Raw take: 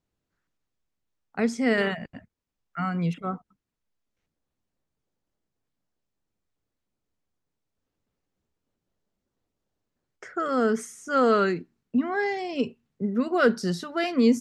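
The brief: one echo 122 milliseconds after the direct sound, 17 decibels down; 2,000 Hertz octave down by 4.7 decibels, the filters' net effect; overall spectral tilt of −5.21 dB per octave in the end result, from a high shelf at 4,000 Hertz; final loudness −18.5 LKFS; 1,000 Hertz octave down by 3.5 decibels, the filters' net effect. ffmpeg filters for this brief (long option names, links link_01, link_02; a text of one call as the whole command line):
ffmpeg -i in.wav -af "equalizer=frequency=1000:width_type=o:gain=-3.5,equalizer=frequency=2000:width_type=o:gain=-6.5,highshelf=frequency=4000:gain=8,aecho=1:1:122:0.141,volume=8.5dB" out.wav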